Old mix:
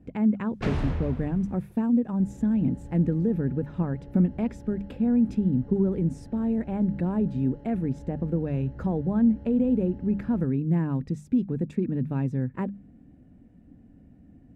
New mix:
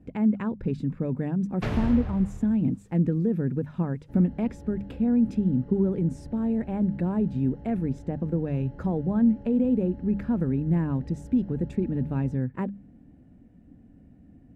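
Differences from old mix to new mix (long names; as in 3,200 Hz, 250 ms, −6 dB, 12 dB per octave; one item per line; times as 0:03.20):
first sound: entry +1.00 s
second sound: entry +1.90 s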